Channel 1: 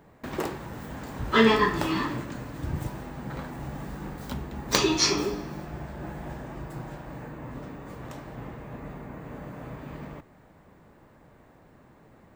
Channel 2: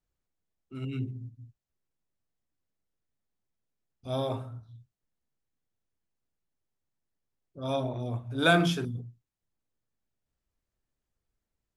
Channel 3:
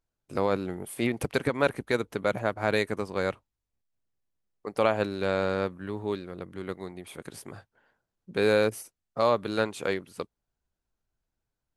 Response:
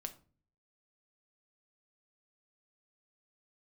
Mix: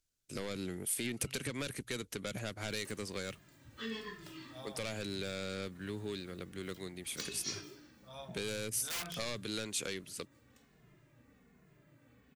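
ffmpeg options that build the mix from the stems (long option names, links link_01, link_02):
-filter_complex "[0:a]highpass=62,asplit=2[link_01][link_02];[link_02]adelay=2.4,afreqshift=-1.2[link_03];[link_01][link_03]amix=inputs=2:normalize=1,adelay=2450,volume=-16.5dB[link_04];[1:a]highpass=57,equalizer=frequency=300:width_type=o:width=0.96:gain=-14.5,aeval=exprs='(mod(10.6*val(0)+1,2)-1)/10.6':channel_layout=same,adelay=450,volume=-15dB[link_05];[2:a]equalizer=frequency=6900:width_type=o:width=1.4:gain=5.5,asoftclip=type=tanh:threshold=-21.5dB,volume=0dB[link_06];[link_04][link_06]amix=inputs=2:normalize=0,equalizer=frequency=880:width=0.95:gain=-13,alimiter=level_in=2.5dB:limit=-24dB:level=0:latency=1:release=50,volume=-2.5dB,volume=0dB[link_07];[link_05][link_07]amix=inputs=2:normalize=0,tiltshelf=frequency=700:gain=-4,acrossover=split=260|3000[link_08][link_09][link_10];[link_09]acompressor=threshold=-39dB:ratio=6[link_11];[link_08][link_11][link_10]amix=inputs=3:normalize=0"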